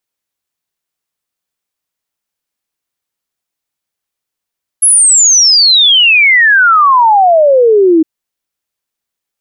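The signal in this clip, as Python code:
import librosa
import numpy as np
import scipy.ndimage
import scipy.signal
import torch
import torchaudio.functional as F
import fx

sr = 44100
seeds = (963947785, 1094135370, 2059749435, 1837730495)

y = fx.ess(sr, length_s=3.21, from_hz=11000.0, to_hz=310.0, level_db=-3.5)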